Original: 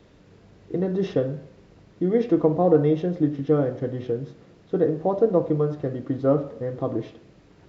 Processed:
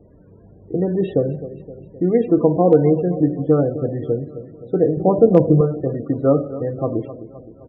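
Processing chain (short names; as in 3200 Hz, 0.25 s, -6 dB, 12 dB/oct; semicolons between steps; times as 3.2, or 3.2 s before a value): bell 78 Hz +3 dB 0.96 oct; on a send: feedback echo 0.26 s, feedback 55%, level -14 dB; on the sum: loudest bins only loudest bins 32; 4.97–5.61 low shelf 260 Hz +9.5 dB; hard clip -6 dBFS, distortion -41 dB; gain +4.5 dB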